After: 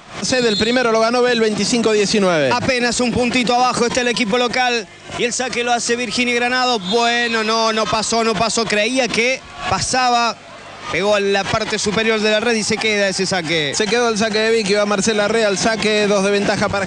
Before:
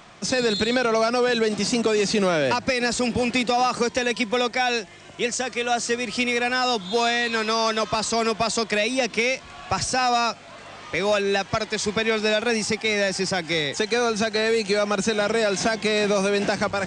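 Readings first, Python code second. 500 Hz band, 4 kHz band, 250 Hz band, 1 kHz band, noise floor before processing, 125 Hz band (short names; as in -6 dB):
+6.0 dB, +6.5 dB, +6.5 dB, +6.0 dB, -43 dBFS, +7.5 dB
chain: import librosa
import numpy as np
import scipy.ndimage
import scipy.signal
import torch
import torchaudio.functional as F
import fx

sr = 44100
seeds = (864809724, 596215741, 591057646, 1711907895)

y = fx.pre_swell(x, sr, db_per_s=120.0)
y = y * 10.0 ** (6.0 / 20.0)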